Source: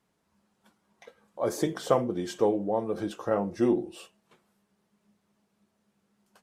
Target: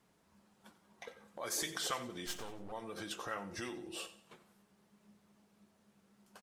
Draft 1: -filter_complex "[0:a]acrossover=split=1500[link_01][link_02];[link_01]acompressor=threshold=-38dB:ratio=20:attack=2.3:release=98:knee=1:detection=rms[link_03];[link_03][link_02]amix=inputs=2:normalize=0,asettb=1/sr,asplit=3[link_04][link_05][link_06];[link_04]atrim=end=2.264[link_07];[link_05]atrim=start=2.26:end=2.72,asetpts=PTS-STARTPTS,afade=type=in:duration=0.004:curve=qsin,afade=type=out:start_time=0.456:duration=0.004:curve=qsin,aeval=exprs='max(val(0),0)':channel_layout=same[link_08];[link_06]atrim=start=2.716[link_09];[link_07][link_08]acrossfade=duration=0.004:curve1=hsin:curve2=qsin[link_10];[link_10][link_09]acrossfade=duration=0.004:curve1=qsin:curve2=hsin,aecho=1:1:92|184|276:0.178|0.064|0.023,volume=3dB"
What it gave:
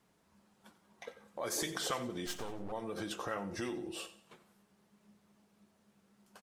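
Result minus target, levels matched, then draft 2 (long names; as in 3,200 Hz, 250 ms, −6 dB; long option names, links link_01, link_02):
downward compressor: peak gain reduction −5.5 dB
-filter_complex "[0:a]acrossover=split=1500[link_01][link_02];[link_01]acompressor=threshold=-44dB:ratio=20:attack=2.3:release=98:knee=1:detection=rms[link_03];[link_03][link_02]amix=inputs=2:normalize=0,asettb=1/sr,asplit=3[link_04][link_05][link_06];[link_04]atrim=end=2.264[link_07];[link_05]atrim=start=2.26:end=2.72,asetpts=PTS-STARTPTS,afade=type=in:duration=0.004:curve=qsin,afade=type=out:start_time=0.456:duration=0.004:curve=qsin,aeval=exprs='max(val(0),0)':channel_layout=same[link_08];[link_06]atrim=start=2.716[link_09];[link_07][link_08]acrossfade=duration=0.004:curve1=hsin:curve2=qsin[link_10];[link_10][link_09]acrossfade=duration=0.004:curve1=qsin:curve2=hsin,aecho=1:1:92|184|276:0.178|0.064|0.023,volume=3dB"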